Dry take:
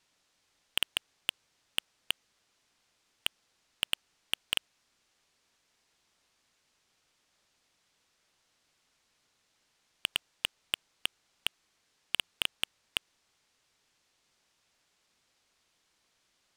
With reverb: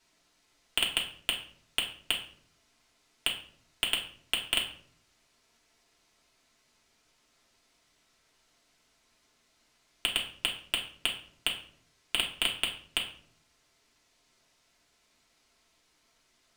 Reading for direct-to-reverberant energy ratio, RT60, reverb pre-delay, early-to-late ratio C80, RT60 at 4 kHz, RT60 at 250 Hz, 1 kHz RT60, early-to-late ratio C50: -3.5 dB, 0.55 s, 3 ms, 12.5 dB, 0.40 s, 0.90 s, 0.50 s, 8.5 dB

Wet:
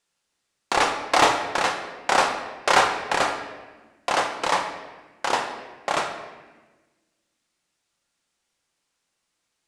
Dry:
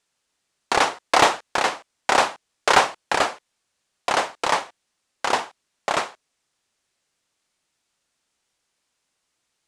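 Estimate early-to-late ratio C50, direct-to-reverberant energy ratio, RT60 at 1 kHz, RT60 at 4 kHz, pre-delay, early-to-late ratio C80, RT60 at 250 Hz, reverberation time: 6.5 dB, 3.5 dB, 1.2 s, 1.0 s, 4 ms, 8.5 dB, 1.7 s, 1.3 s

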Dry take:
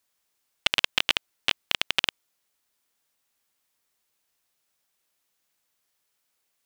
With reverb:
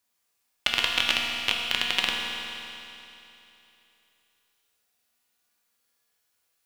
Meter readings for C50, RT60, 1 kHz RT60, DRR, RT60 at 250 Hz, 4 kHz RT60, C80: 0.5 dB, 3.0 s, 3.0 s, -1.5 dB, 3.0 s, 3.0 s, 1.5 dB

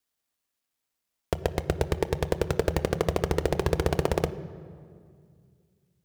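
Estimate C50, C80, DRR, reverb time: 14.5 dB, 15.5 dB, 11.0 dB, 2.1 s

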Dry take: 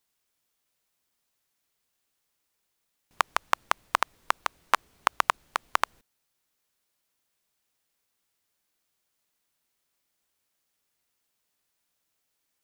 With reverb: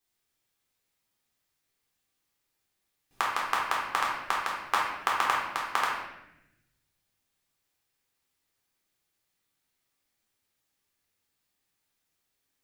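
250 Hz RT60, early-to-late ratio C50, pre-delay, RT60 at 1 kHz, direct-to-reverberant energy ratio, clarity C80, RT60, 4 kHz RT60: 1.5 s, 1.5 dB, 3 ms, 0.80 s, -4.5 dB, 4.0 dB, 0.90 s, 0.75 s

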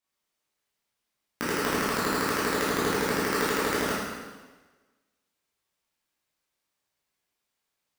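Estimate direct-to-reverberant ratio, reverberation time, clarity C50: -9.5 dB, 1.3 s, -2.0 dB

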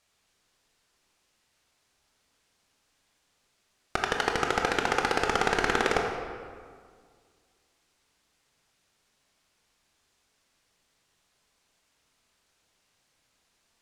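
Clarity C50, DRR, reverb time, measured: 3.5 dB, 1.5 dB, 1.9 s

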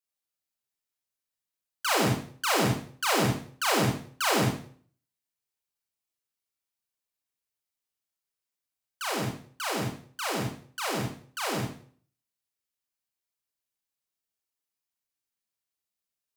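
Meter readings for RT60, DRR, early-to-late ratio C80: 0.50 s, -2.5 dB, 8.5 dB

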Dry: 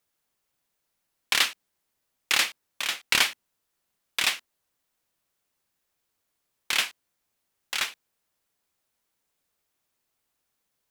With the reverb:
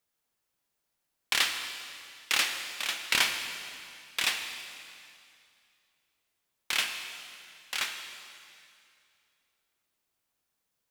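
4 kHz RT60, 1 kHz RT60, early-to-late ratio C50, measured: 2.4 s, 2.4 s, 6.0 dB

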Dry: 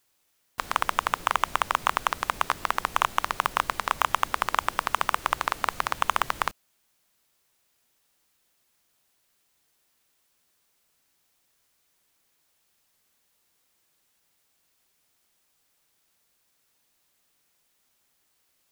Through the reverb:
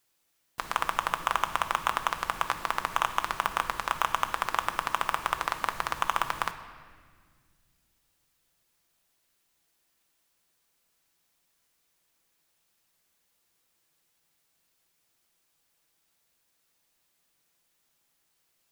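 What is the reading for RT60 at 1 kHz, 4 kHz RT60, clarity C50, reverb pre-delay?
1.6 s, 1.5 s, 10.5 dB, 6 ms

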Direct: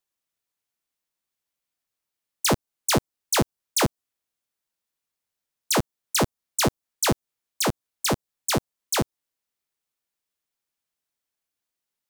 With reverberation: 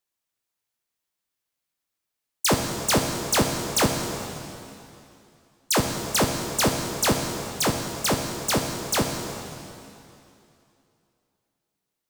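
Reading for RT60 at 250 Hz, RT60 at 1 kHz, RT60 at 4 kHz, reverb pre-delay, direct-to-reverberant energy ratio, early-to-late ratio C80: 2.8 s, 2.8 s, 2.6 s, 6 ms, 2.5 dB, 5.0 dB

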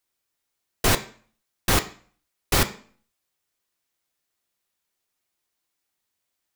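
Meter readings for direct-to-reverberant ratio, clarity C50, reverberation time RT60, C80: 7.0 dB, 15.0 dB, 0.45 s, 19.0 dB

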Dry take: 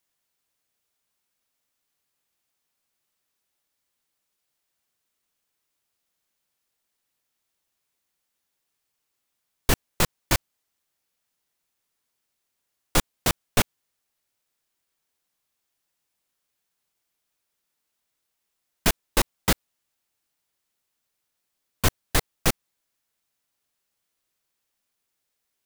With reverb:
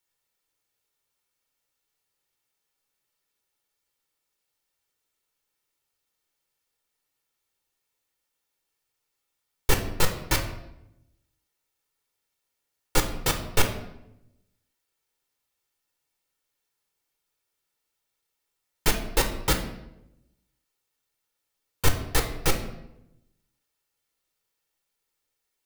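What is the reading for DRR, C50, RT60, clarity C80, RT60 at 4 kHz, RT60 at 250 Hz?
4.0 dB, 9.0 dB, 0.85 s, 11.5 dB, 0.65 s, 1.1 s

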